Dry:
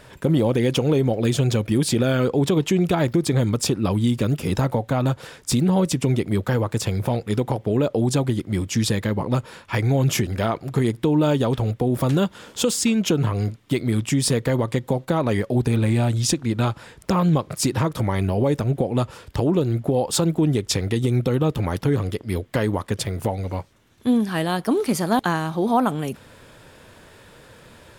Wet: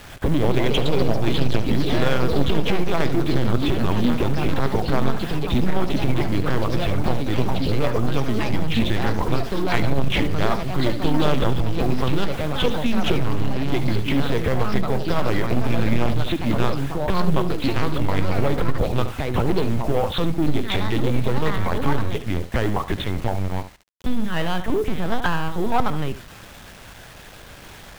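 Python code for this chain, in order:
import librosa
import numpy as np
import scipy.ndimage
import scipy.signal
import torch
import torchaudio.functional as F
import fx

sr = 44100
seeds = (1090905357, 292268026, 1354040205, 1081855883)

p1 = fx.lpc_vocoder(x, sr, seeds[0], excitation='pitch_kept', order=8)
p2 = fx.peak_eq(p1, sr, hz=370.0, db=-5.0, octaves=1.6)
p3 = fx.quant_dither(p2, sr, seeds[1], bits=8, dither='none')
p4 = fx.echo_pitch(p3, sr, ms=232, semitones=3, count=3, db_per_echo=-6.0)
p5 = p4 + 10.0 ** (-14.5 / 20.0) * np.pad(p4, (int(72 * sr / 1000.0), 0))[:len(p4)]
p6 = 10.0 ** (-21.5 / 20.0) * (np.abs((p5 / 10.0 ** (-21.5 / 20.0) + 3.0) % 4.0 - 2.0) - 1.0)
p7 = p5 + F.gain(torch.from_numpy(p6), -6.0).numpy()
y = F.gain(torch.from_numpy(p7), 2.0).numpy()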